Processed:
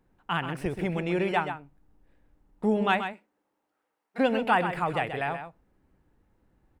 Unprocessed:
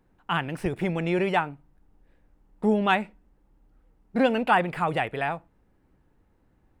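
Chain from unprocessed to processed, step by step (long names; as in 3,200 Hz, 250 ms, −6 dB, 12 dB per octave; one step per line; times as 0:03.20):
0:02.99–0:04.18: high-pass filter 270 Hz → 970 Hz 12 dB per octave
single-tap delay 130 ms −9 dB
level −2.5 dB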